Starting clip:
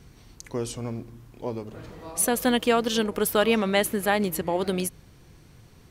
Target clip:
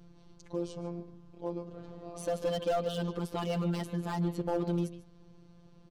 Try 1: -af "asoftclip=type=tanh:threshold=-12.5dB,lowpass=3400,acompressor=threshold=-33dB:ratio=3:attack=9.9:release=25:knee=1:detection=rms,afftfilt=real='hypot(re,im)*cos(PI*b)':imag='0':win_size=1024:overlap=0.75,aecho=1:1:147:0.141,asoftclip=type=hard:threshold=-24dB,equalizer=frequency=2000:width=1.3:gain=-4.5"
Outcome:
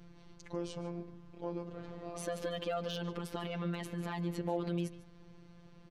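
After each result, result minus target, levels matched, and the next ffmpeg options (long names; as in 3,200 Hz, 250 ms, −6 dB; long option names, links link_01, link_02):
soft clipping: distortion +17 dB; downward compressor: peak gain reduction +10.5 dB; 2,000 Hz band +5.0 dB
-af "asoftclip=type=tanh:threshold=-2.5dB,lowpass=3400,acompressor=threshold=-33dB:ratio=3:attack=9.9:release=25:knee=1:detection=rms,afftfilt=real='hypot(re,im)*cos(PI*b)':imag='0':win_size=1024:overlap=0.75,aecho=1:1:147:0.141,asoftclip=type=hard:threshold=-24dB,equalizer=frequency=2000:width=1.3:gain=-4.5"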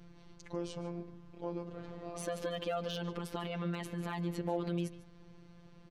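downward compressor: peak gain reduction +11.5 dB; 2,000 Hz band +5.0 dB
-af "asoftclip=type=tanh:threshold=-2.5dB,lowpass=3400,afftfilt=real='hypot(re,im)*cos(PI*b)':imag='0':win_size=1024:overlap=0.75,aecho=1:1:147:0.141,asoftclip=type=hard:threshold=-24dB,equalizer=frequency=2000:width=1.3:gain=-4.5"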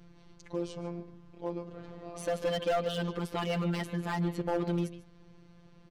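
2,000 Hz band +6.0 dB
-af "asoftclip=type=tanh:threshold=-2.5dB,lowpass=3400,afftfilt=real='hypot(re,im)*cos(PI*b)':imag='0':win_size=1024:overlap=0.75,aecho=1:1:147:0.141,asoftclip=type=hard:threshold=-24dB,equalizer=frequency=2000:width=1.3:gain=-13"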